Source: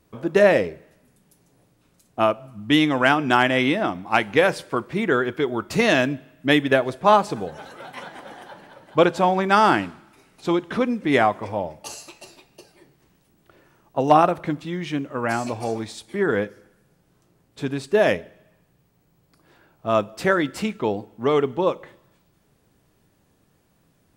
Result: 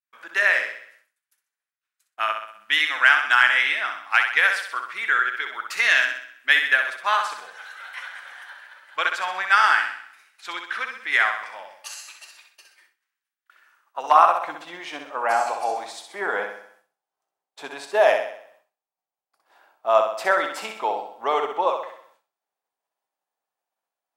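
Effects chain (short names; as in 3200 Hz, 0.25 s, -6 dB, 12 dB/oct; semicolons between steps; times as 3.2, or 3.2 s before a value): flutter echo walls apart 11 m, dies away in 0.62 s; high-pass sweep 1600 Hz -> 780 Hz, 13.52–14.75; expander -51 dBFS; gain -1.5 dB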